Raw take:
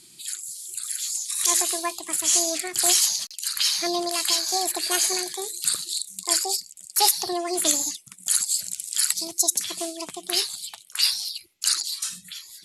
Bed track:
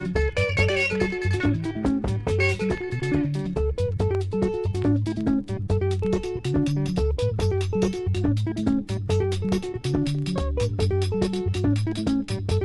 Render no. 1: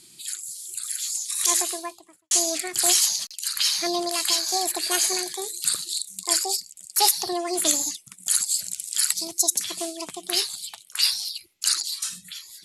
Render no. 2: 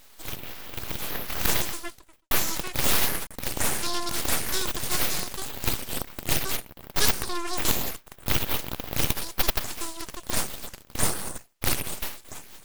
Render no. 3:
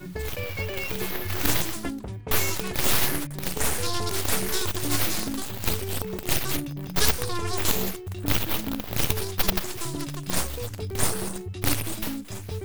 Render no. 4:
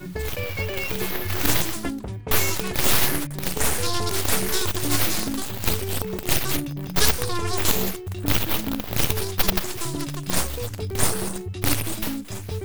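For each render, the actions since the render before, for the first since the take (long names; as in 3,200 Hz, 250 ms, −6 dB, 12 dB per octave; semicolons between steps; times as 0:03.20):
0:01.51–0:02.31: fade out and dull
full-wave rectification
mix in bed track −10 dB
level +3 dB; brickwall limiter −3 dBFS, peak gain reduction 2.5 dB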